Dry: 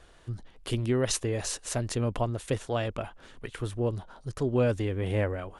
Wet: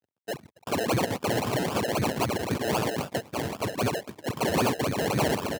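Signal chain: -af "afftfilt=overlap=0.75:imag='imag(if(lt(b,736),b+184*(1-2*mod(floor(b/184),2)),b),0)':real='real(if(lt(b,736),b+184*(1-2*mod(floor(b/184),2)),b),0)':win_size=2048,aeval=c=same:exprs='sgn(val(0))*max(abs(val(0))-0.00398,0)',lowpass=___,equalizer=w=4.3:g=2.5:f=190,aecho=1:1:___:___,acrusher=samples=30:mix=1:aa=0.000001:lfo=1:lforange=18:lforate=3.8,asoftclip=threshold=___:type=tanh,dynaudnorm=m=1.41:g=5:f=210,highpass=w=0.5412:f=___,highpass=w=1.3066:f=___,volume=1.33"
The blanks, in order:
10000, 639, 0.562, 0.0531, 89, 89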